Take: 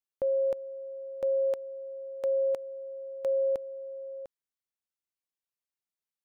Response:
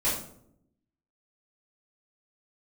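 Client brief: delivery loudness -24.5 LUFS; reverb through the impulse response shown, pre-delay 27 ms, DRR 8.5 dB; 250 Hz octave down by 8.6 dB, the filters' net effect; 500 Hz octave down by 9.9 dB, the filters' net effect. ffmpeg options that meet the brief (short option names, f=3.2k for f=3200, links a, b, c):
-filter_complex "[0:a]equalizer=f=250:t=o:g=-8.5,equalizer=f=500:t=o:g=-9,asplit=2[a][b];[1:a]atrim=start_sample=2205,adelay=27[c];[b][c]afir=irnorm=-1:irlink=0,volume=-18.5dB[d];[a][d]amix=inputs=2:normalize=0,volume=16.5dB"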